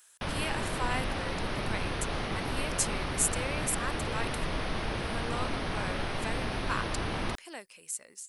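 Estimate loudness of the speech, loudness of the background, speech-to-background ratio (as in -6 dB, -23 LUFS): -36.5 LUFS, -34.0 LUFS, -2.5 dB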